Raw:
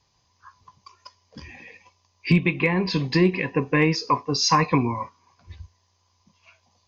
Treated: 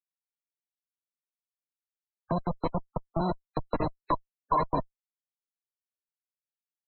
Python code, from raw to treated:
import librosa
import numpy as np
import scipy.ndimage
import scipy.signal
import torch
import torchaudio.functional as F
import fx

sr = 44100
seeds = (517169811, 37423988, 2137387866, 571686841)

y = fx.wiener(x, sr, points=41)
y = fx.rev_freeverb(y, sr, rt60_s=1.9, hf_ratio=0.95, predelay_ms=15, drr_db=1.0)
y = fx.level_steps(y, sr, step_db=19)
y = fx.schmitt(y, sr, flips_db=-21.5)
y = fx.small_body(y, sr, hz=(650.0, 970.0, 4000.0), ring_ms=20, db=12)
y = fx.spec_gate(y, sr, threshold_db=-20, keep='strong')
y = fx.band_squash(y, sr, depth_pct=40)